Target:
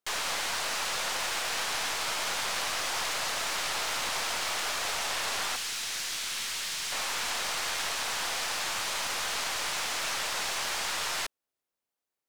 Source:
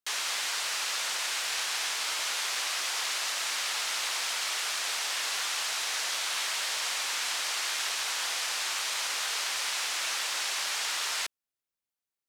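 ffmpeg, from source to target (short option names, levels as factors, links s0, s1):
-af "asetnsamples=n=441:p=0,asendcmd='5.56 equalizer g -7.5;6.92 equalizer g 8',equalizer=f=540:t=o:w=2.6:g=10,aeval=exprs='clip(val(0),-1,0.0188)':c=same"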